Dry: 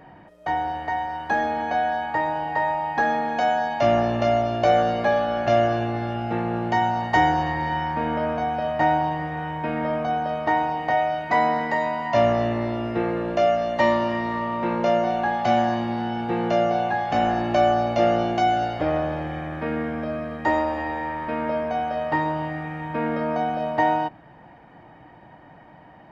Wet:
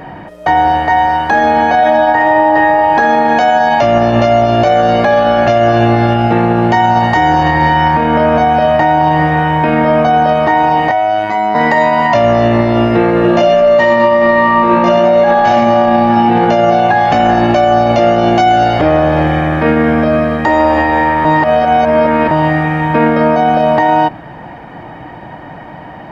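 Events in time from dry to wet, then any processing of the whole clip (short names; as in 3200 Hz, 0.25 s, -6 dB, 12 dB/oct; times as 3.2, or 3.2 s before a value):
1.77–2.47 reverb throw, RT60 2.2 s, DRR -5 dB
10.91–11.55 robotiser 106 Hz
13.2–16.25 reverb throw, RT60 1.5 s, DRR -6 dB
21.25–22.31 reverse
whole clip: maximiser +19 dB; gain -1 dB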